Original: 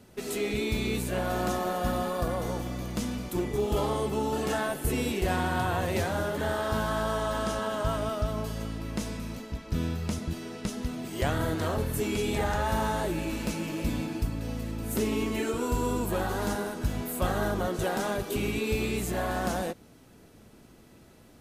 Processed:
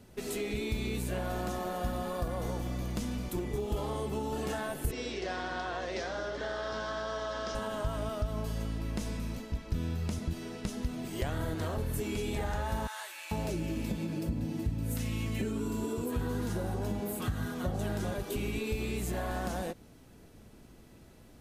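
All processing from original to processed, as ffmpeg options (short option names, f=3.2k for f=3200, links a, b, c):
-filter_complex "[0:a]asettb=1/sr,asplit=3[a][b][c];[a]atrim=end=4.914[d];[b]atrim=start=4.91:end=7.55,asetpts=PTS-STARTPTS,afade=t=in:d=0.004:c=qsin,afade=t=out:st=2.636:d=0.004:c=qsin,highpass=390,equalizer=f=890:t=q:w=4:g=-7,equalizer=f=2.6k:t=q:w=4:g=-4,equalizer=f=5.4k:t=q:w=4:g=7,lowpass=f=5.8k:w=0.5412,lowpass=f=5.8k:w=1.3066,aeval=exprs='val(0)+0.00398*(sin(2*PI*60*n/s)+sin(2*PI*2*60*n/s)/2+sin(2*PI*3*60*n/s)/3+sin(2*PI*4*60*n/s)/4+sin(2*PI*5*60*n/s)/5)':c=same[e];[c]atrim=start=7.546[f];[d][e]acrossfade=d=0.004:c1=hsin:c2=qsin[g];[g][f]acrossfade=d=0.004:c1=qsin:c2=hsin,asettb=1/sr,asplit=3[h][i][j];[h]atrim=end=12.874[k];[i]atrim=start=12.87:end=18.14,asetpts=PTS-STARTPTS,afade=t=in:d=0.004:c=qsin,afade=t=out:st=5.266:d=0.004:c=qsin,highpass=61,equalizer=f=120:w=0.56:g=5.5,acrossover=split=1000[l][m];[l]adelay=440[n];[n][m]amix=inputs=2:normalize=0,atrim=end_sample=232407[o];[j]atrim=start=18.136[p];[k][o]acrossfade=d=0.004:c1=hsin:c2=qsin[q];[q][p]acrossfade=d=0.004:c1=qsin:c2=hsin,equalizer=f=1.3k:w=7.2:g=-2,acompressor=threshold=-29dB:ratio=6,lowshelf=f=78:g=8.5,volume=-2.5dB"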